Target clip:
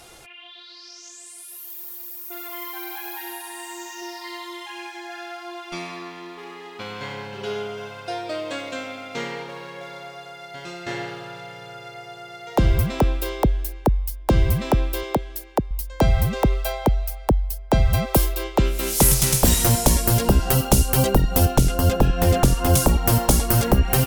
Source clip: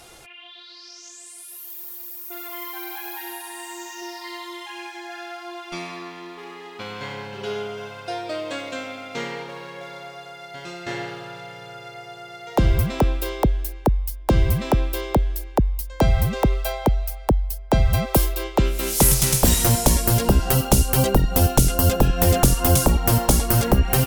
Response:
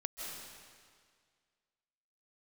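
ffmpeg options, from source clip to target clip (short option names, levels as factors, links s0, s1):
-filter_complex "[0:a]asettb=1/sr,asplit=3[s0][s1][s2];[s0]atrim=end=15.034[s3];[s1]atrim=start=15.03:end=15.71,asetpts=PTS-STARTPTS,afade=t=in:d=0.004:c=qsin,afade=t=out:st=0.676:d=0.004:c=qsin,highpass=f=210:p=1[s4];[s2]atrim=start=15.706[s5];[s3][s4]acrossfade=d=0.004:c1=hsin:c2=qsin[s6];[s6][s5]acrossfade=d=0.004:c1=qsin:c2=hsin,asettb=1/sr,asplit=3[s7][s8][s9];[s7]atrim=end=21.454[s10];[s8]atrim=start=21.45:end=22.74,asetpts=PTS-STARTPTS,afade=t=in:d=0.004:c=qsin,afade=t=out:st=1.286:d=0.004:c=qsin,highshelf=f=5900:g=-8.5[s11];[s9]atrim=start=22.736[s12];[s10][s11]acrossfade=d=0.004:c1=hsin:c2=qsin[s13];[s13][s12]acrossfade=d=0.004:c1=qsin:c2=hsin"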